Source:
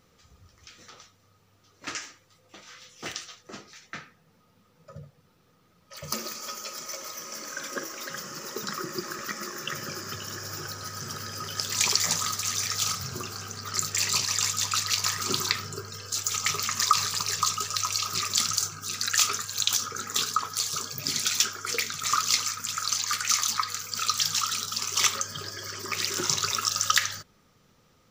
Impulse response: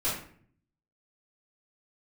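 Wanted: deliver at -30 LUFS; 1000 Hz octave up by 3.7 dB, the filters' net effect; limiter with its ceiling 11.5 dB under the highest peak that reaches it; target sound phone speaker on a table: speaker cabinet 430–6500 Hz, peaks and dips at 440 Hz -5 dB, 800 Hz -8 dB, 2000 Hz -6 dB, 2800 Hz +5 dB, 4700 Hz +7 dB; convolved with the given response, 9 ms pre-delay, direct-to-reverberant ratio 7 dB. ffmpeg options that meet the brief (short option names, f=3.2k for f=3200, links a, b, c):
-filter_complex "[0:a]equalizer=f=1k:t=o:g=6.5,alimiter=limit=-13dB:level=0:latency=1,asplit=2[a][b];[1:a]atrim=start_sample=2205,adelay=9[c];[b][c]afir=irnorm=-1:irlink=0,volume=-15.5dB[d];[a][d]amix=inputs=2:normalize=0,highpass=f=430:w=0.5412,highpass=f=430:w=1.3066,equalizer=f=440:t=q:w=4:g=-5,equalizer=f=800:t=q:w=4:g=-8,equalizer=f=2k:t=q:w=4:g=-6,equalizer=f=2.8k:t=q:w=4:g=5,equalizer=f=4.7k:t=q:w=4:g=7,lowpass=f=6.5k:w=0.5412,lowpass=f=6.5k:w=1.3066,volume=-4dB"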